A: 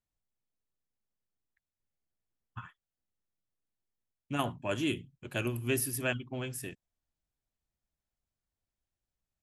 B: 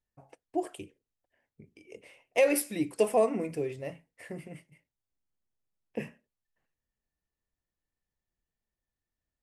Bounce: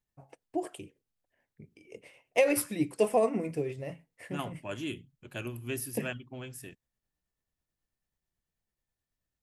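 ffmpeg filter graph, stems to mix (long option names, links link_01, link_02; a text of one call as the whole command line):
ffmpeg -i stem1.wav -i stem2.wav -filter_complex "[0:a]volume=-5dB[link_01];[1:a]equalizer=frequency=140:width=1.5:gain=4,tremolo=f=9.2:d=0.4,volume=1dB[link_02];[link_01][link_02]amix=inputs=2:normalize=0" out.wav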